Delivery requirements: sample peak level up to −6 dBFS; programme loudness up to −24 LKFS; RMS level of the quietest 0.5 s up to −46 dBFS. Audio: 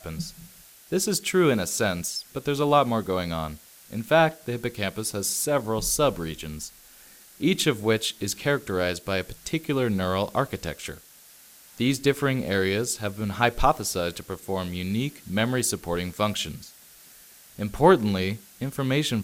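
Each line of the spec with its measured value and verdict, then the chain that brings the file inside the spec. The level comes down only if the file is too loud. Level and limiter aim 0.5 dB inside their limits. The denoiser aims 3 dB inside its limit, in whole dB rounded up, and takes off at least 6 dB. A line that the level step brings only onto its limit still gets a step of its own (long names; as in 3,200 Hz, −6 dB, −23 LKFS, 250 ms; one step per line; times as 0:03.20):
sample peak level −3.5 dBFS: out of spec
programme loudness −25.5 LKFS: in spec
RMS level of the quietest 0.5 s −51 dBFS: in spec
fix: brickwall limiter −6.5 dBFS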